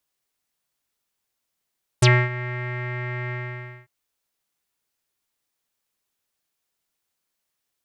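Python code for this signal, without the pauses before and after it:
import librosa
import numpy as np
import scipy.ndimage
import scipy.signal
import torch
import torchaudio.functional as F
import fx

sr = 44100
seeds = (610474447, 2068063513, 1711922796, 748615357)

y = fx.sub_voice(sr, note=47, wave='square', cutoff_hz=2000.0, q=9.5, env_oct=2.5, env_s=0.06, attack_ms=8.2, decay_s=0.26, sustain_db=-17.0, release_s=0.56, note_s=1.29, slope=12)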